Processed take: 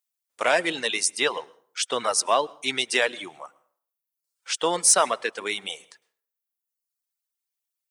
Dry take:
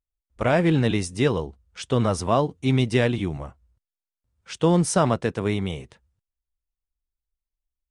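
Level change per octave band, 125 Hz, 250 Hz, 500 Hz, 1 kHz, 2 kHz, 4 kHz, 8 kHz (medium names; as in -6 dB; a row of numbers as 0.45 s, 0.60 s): -28.0 dB, -14.5 dB, -3.0 dB, +1.5 dB, +5.0 dB, +7.5 dB, +11.0 dB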